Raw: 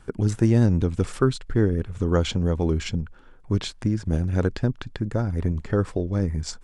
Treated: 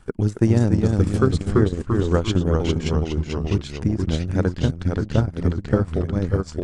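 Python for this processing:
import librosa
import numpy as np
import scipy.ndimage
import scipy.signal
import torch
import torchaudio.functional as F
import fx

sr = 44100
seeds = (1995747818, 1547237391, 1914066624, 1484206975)

y = fx.echo_pitch(x, sr, ms=265, semitones=-1, count=3, db_per_echo=-3.0)
y = fx.transient(y, sr, attack_db=3, sustain_db=-12)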